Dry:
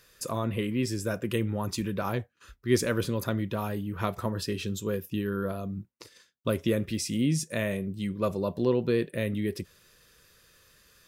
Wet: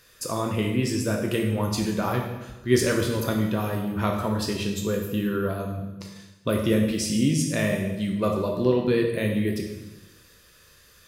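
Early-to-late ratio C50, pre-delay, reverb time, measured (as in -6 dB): 4.5 dB, 11 ms, 1.0 s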